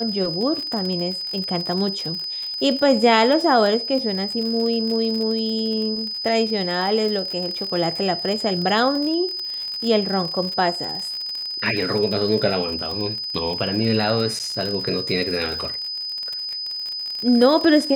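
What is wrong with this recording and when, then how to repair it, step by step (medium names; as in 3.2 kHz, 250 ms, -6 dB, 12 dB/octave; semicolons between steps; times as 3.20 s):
crackle 53 per s -26 dBFS
whine 5 kHz -26 dBFS
14.39–14.40 s: dropout 9.2 ms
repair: de-click; band-stop 5 kHz, Q 30; interpolate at 14.39 s, 9.2 ms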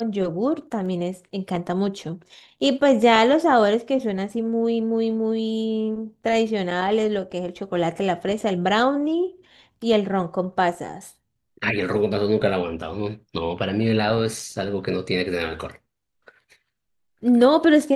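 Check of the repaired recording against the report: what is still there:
nothing left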